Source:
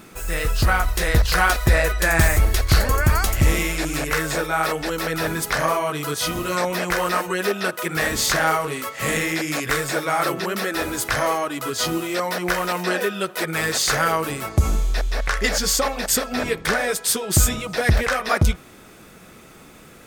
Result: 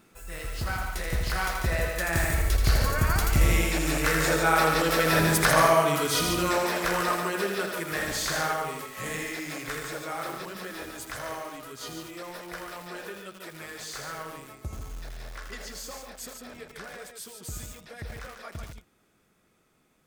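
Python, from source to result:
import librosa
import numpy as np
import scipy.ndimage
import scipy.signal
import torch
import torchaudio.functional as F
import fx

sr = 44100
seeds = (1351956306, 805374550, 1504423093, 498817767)

y = fx.doppler_pass(x, sr, speed_mps=6, closest_m=5.9, pass_at_s=5.2)
y = y + 10.0 ** (-6.0 / 20.0) * np.pad(y, (int(144 * sr / 1000.0), 0))[:len(y)]
y = fx.echo_crushed(y, sr, ms=81, feedback_pct=35, bits=7, wet_db=-5.0)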